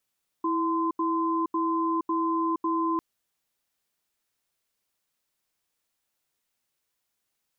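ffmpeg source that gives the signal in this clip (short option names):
-f lavfi -i "aevalsrc='0.0501*(sin(2*PI*328*t)+sin(2*PI*1030*t))*clip(min(mod(t,0.55),0.47-mod(t,0.55))/0.005,0,1)':d=2.55:s=44100"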